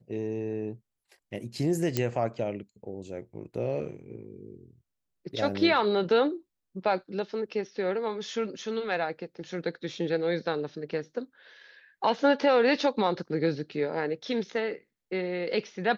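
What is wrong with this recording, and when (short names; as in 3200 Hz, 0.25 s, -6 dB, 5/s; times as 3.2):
1.97 pop -12 dBFS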